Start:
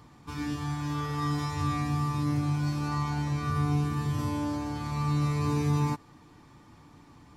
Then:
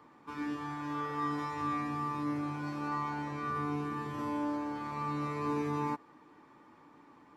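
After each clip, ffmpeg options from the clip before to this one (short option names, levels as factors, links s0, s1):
-filter_complex "[0:a]acrossover=split=240 2400:gain=0.0794 1 0.2[s0][s1][s2];[s0][s1][s2]amix=inputs=3:normalize=0,bandreject=f=720:w=14"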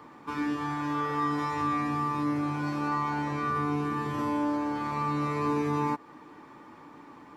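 -af "acompressor=threshold=0.01:ratio=1.5,volume=2.82"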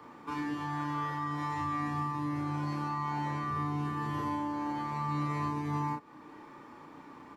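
-filter_complex "[0:a]acrossover=split=170[s0][s1];[s1]alimiter=level_in=1.33:limit=0.0631:level=0:latency=1:release=398,volume=0.75[s2];[s0][s2]amix=inputs=2:normalize=0,asplit=2[s3][s4];[s4]adelay=33,volume=0.708[s5];[s3][s5]amix=inputs=2:normalize=0,volume=0.75"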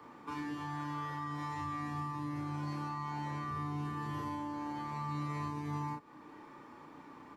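-filter_complex "[0:a]acrossover=split=140|3000[s0][s1][s2];[s1]acompressor=threshold=0.0141:ratio=2[s3];[s0][s3][s2]amix=inputs=3:normalize=0,volume=0.75"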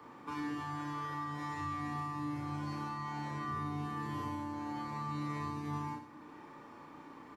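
-af "aecho=1:1:64|128|192|256|320|384:0.398|0.215|0.116|0.0627|0.0339|0.0183"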